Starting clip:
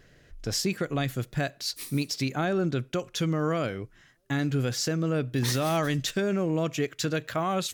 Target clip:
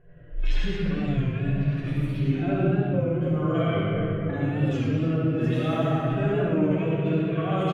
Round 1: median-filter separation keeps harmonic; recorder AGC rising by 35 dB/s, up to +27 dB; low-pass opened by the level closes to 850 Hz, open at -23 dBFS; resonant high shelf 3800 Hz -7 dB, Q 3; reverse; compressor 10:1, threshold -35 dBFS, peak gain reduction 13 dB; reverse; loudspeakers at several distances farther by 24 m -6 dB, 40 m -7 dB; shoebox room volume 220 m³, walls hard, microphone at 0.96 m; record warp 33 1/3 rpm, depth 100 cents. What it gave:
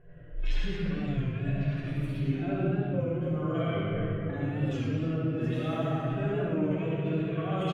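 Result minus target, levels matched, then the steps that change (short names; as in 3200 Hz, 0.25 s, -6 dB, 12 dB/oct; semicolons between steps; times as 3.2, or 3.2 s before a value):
compressor: peak gain reduction +6 dB
change: compressor 10:1, threshold -28.5 dBFS, peak gain reduction 7 dB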